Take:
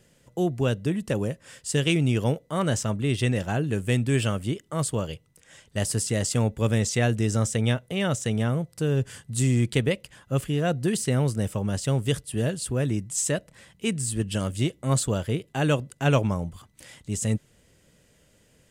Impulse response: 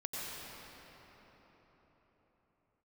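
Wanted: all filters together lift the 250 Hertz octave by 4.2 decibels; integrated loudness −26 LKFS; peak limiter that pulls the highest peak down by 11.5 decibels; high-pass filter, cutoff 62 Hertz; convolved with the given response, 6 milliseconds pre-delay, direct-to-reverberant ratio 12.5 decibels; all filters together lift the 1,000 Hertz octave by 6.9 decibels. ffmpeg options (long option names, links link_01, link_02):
-filter_complex "[0:a]highpass=62,equalizer=frequency=250:width_type=o:gain=5,equalizer=frequency=1000:width_type=o:gain=9,alimiter=limit=-15dB:level=0:latency=1,asplit=2[link_01][link_02];[1:a]atrim=start_sample=2205,adelay=6[link_03];[link_02][link_03]afir=irnorm=-1:irlink=0,volume=-15dB[link_04];[link_01][link_04]amix=inputs=2:normalize=0,volume=0.5dB"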